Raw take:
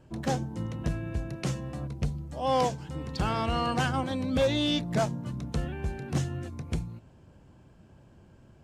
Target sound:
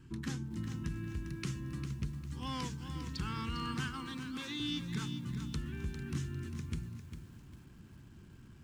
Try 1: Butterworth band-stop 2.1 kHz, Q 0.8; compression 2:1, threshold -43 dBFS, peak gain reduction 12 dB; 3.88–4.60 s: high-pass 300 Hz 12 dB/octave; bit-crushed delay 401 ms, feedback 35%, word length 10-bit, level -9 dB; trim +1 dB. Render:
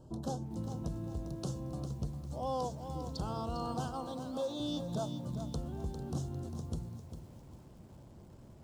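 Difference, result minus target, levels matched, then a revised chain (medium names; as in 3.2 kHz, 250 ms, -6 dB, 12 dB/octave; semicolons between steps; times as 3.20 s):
2 kHz band -15.0 dB
Butterworth band-stop 630 Hz, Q 0.8; compression 2:1, threshold -43 dBFS, peak gain reduction 11 dB; 3.88–4.60 s: high-pass 300 Hz 12 dB/octave; bit-crushed delay 401 ms, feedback 35%, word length 10-bit, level -9 dB; trim +1 dB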